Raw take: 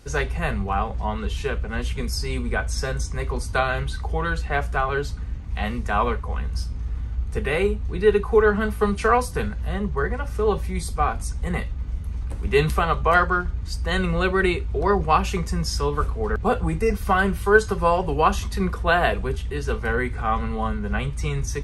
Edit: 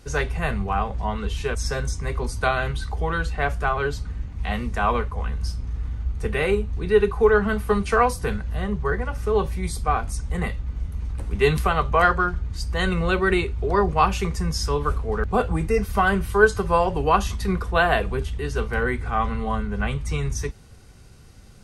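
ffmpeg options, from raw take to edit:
-filter_complex "[0:a]asplit=2[s0][s1];[s0]atrim=end=1.552[s2];[s1]atrim=start=2.668[s3];[s2][s3]acrossfade=d=0.004:c1=hsin:c2=hsin"

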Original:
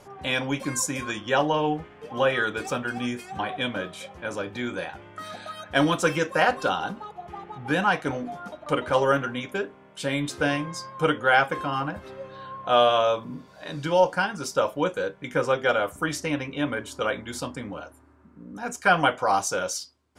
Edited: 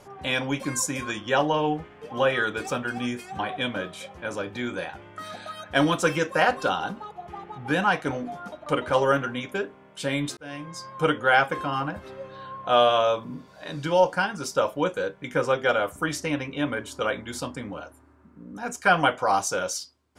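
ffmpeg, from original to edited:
-filter_complex "[0:a]asplit=2[s0][s1];[s0]atrim=end=10.37,asetpts=PTS-STARTPTS,afade=t=out:st=10.366:d=0.004:c=hsin[s2];[s1]atrim=start=10.37,asetpts=PTS-STARTPTS,afade=t=in:d=0.57[s3];[s2][s3]concat=n=2:v=0:a=1"

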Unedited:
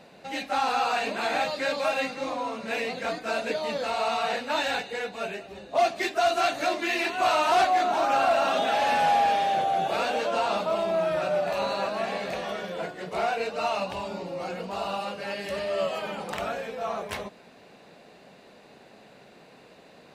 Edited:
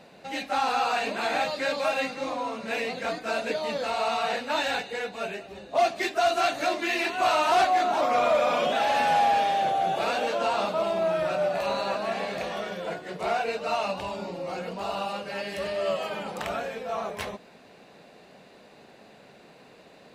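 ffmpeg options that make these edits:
-filter_complex "[0:a]asplit=3[s0][s1][s2];[s0]atrim=end=8.014[s3];[s1]atrim=start=8.01:end=8.64,asetpts=PTS-STARTPTS,asetrate=39249,aresample=44100[s4];[s2]atrim=start=8.636[s5];[s3][s4]acrossfade=d=0.004:c1=hsin:c2=hsin[s6];[s6][s5]acrossfade=d=0.004:c1=hsin:c2=hsin"

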